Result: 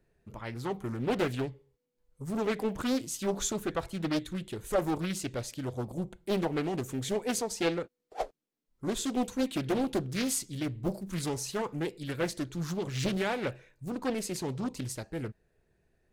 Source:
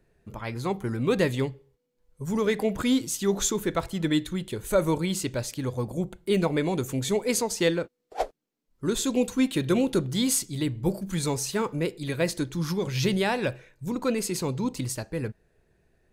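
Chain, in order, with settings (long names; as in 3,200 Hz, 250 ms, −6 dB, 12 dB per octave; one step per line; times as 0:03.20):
highs frequency-modulated by the lows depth 0.77 ms
level −5.5 dB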